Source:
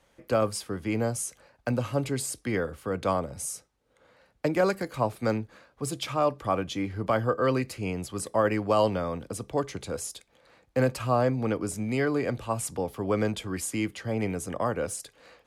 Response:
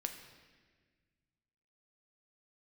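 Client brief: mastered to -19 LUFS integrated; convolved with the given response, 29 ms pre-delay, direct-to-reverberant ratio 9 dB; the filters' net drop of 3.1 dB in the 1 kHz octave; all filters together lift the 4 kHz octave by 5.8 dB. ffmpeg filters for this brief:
-filter_complex "[0:a]equalizer=f=1000:t=o:g=-4.5,equalizer=f=4000:t=o:g=8,asplit=2[s0][s1];[1:a]atrim=start_sample=2205,adelay=29[s2];[s1][s2]afir=irnorm=-1:irlink=0,volume=0.376[s3];[s0][s3]amix=inputs=2:normalize=0,volume=3.16"

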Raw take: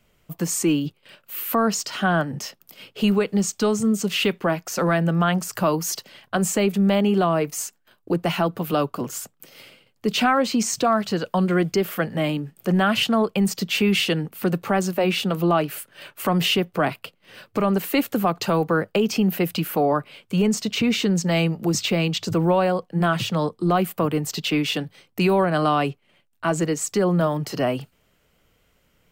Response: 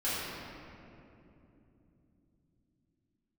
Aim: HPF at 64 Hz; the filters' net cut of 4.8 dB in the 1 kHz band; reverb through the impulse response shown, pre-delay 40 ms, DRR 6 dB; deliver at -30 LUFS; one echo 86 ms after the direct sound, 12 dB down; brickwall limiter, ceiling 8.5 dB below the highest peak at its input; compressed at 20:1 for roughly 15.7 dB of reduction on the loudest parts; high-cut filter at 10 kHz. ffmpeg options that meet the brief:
-filter_complex "[0:a]highpass=64,lowpass=10000,equalizer=f=1000:t=o:g=-7,acompressor=threshold=0.0251:ratio=20,alimiter=level_in=1.68:limit=0.0631:level=0:latency=1,volume=0.596,aecho=1:1:86:0.251,asplit=2[s0][s1];[1:a]atrim=start_sample=2205,adelay=40[s2];[s1][s2]afir=irnorm=-1:irlink=0,volume=0.188[s3];[s0][s3]amix=inputs=2:normalize=0,volume=2.11"

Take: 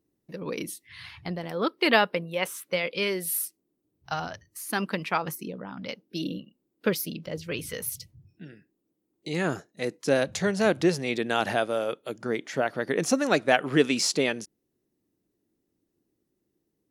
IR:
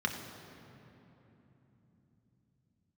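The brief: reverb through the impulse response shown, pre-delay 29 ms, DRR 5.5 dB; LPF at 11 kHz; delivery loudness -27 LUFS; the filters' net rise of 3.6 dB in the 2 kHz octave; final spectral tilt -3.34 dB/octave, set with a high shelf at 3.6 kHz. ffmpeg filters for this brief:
-filter_complex "[0:a]lowpass=11000,equalizer=f=2000:t=o:g=6.5,highshelf=f=3600:g=-7.5,asplit=2[s0][s1];[1:a]atrim=start_sample=2205,adelay=29[s2];[s1][s2]afir=irnorm=-1:irlink=0,volume=0.237[s3];[s0][s3]amix=inputs=2:normalize=0,volume=0.891"

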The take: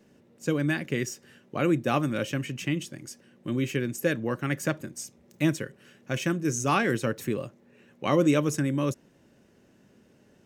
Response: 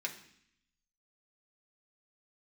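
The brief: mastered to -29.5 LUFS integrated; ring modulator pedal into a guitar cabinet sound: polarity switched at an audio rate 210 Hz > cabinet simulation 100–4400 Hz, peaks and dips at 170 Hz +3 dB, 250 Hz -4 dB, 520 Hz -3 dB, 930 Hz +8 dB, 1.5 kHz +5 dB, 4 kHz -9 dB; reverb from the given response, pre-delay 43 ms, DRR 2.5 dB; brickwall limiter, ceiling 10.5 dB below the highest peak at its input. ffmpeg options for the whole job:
-filter_complex "[0:a]alimiter=limit=0.0944:level=0:latency=1,asplit=2[s0][s1];[1:a]atrim=start_sample=2205,adelay=43[s2];[s1][s2]afir=irnorm=-1:irlink=0,volume=0.596[s3];[s0][s3]amix=inputs=2:normalize=0,aeval=exprs='val(0)*sgn(sin(2*PI*210*n/s))':c=same,highpass=100,equalizer=f=170:t=q:w=4:g=3,equalizer=f=250:t=q:w=4:g=-4,equalizer=f=520:t=q:w=4:g=-3,equalizer=f=930:t=q:w=4:g=8,equalizer=f=1500:t=q:w=4:g=5,equalizer=f=4000:t=q:w=4:g=-9,lowpass=f=4400:w=0.5412,lowpass=f=4400:w=1.3066,volume=1.19"

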